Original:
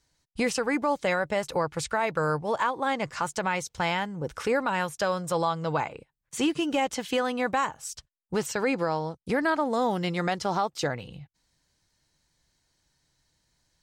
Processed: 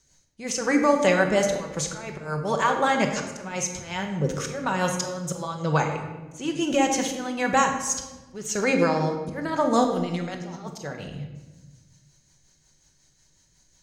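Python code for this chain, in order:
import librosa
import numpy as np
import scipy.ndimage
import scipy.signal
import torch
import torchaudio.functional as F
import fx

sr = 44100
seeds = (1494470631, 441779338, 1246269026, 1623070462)

y = fx.peak_eq(x, sr, hz=6500.0, db=14.0, octaves=0.24)
y = fx.over_compress(y, sr, threshold_db=-38.0, ratio=-1.0, at=(9.84, 10.74))
y = fx.auto_swell(y, sr, attack_ms=402.0)
y = fx.rotary(y, sr, hz=5.5)
y = fx.room_shoebox(y, sr, seeds[0], volume_m3=760.0, walls='mixed', distance_m=1.1)
y = y * 10.0 ** (6.5 / 20.0)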